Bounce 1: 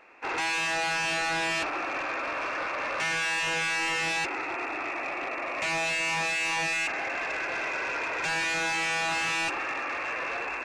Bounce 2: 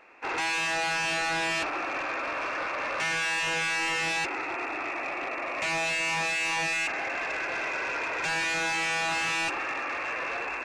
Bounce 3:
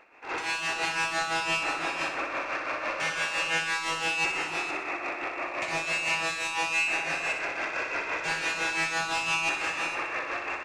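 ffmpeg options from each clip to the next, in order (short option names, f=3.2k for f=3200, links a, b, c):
-af anull
-filter_complex "[0:a]asplit=2[a][b];[b]aecho=0:1:454:0.631[c];[a][c]amix=inputs=2:normalize=0,tremolo=f=5.9:d=0.67,asplit=2[d][e];[e]aecho=0:1:62|124|186|248|310|372|434:0.447|0.241|0.13|0.0703|0.038|0.0205|0.0111[f];[d][f]amix=inputs=2:normalize=0"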